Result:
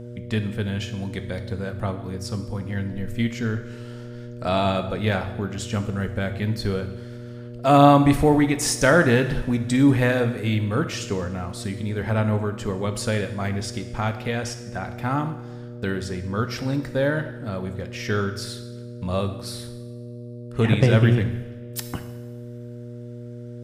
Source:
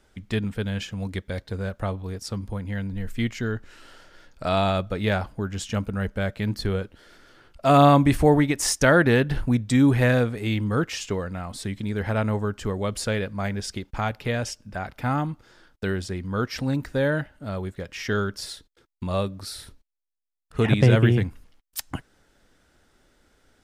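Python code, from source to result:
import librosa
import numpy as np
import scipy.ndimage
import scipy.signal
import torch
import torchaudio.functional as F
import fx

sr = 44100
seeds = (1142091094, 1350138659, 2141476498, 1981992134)

y = fx.dmg_buzz(x, sr, base_hz=120.0, harmonics=5, level_db=-37.0, tilt_db=-4, odd_only=False)
y = fx.rev_double_slope(y, sr, seeds[0], early_s=0.96, late_s=2.7, knee_db=-18, drr_db=7.5)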